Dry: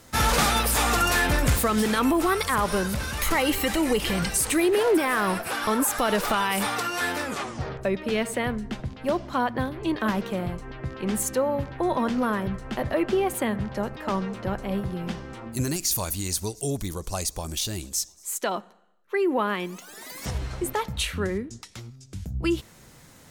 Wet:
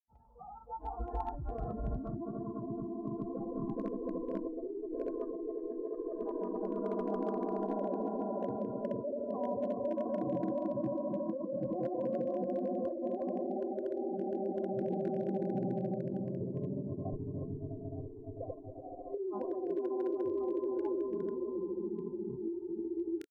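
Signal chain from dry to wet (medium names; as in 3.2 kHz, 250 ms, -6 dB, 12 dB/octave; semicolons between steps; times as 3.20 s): expander on every frequency bin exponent 1.5; steep low-pass 960 Hz 48 dB/octave; level held to a coarse grid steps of 13 dB; on a send: echo with a slow build-up 105 ms, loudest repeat 8, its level -5 dB; on the sum: compressor with a negative ratio -30 dBFS, ratio -1; granulator 144 ms, grains 14 per s, pitch spread up and down by 0 st; hard clipper -22.5 dBFS, distortion -29 dB; spectral noise reduction 23 dB; trim -3.5 dB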